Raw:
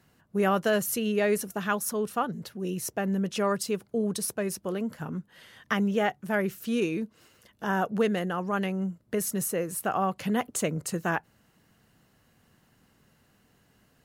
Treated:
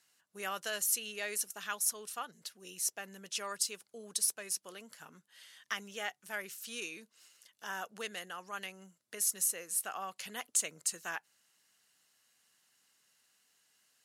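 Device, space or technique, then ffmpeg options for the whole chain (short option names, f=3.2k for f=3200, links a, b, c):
piezo pickup straight into a mixer: -af "lowpass=8.6k,aderivative,volume=4.5dB"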